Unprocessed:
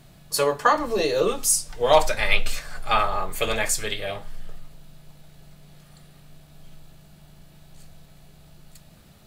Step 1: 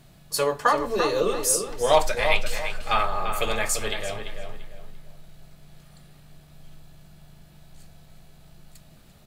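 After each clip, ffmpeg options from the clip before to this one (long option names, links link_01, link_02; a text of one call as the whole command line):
ffmpeg -i in.wav -filter_complex "[0:a]asplit=2[link_01][link_02];[link_02]adelay=342,lowpass=frequency=3200:poles=1,volume=-7dB,asplit=2[link_03][link_04];[link_04]adelay=342,lowpass=frequency=3200:poles=1,volume=0.32,asplit=2[link_05][link_06];[link_06]adelay=342,lowpass=frequency=3200:poles=1,volume=0.32,asplit=2[link_07][link_08];[link_08]adelay=342,lowpass=frequency=3200:poles=1,volume=0.32[link_09];[link_01][link_03][link_05][link_07][link_09]amix=inputs=5:normalize=0,volume=-2dB" out.wav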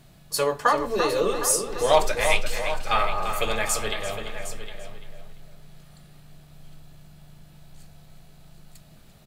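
ffmpeg -i in.wav -af "aecho=1:1:760:0.251" out.wav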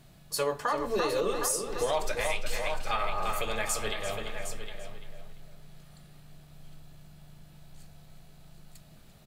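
ffmpeg -i in.wav -af "alimiter=limit=-15.5dB:level=0:latency=1:release=180,volume=-3dB" out.wav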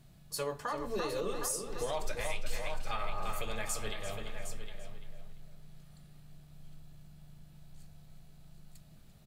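ffmpeg -i in.wav -af "bass=frequency=250:gain=6,treble=frequency=4000:gain=2,volume=-7.5dB" out.wav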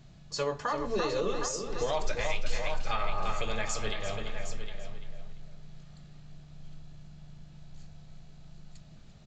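ffmpeg -i in.wav -af "aresample=16000,aresample=44100,volume=5dB" out.wav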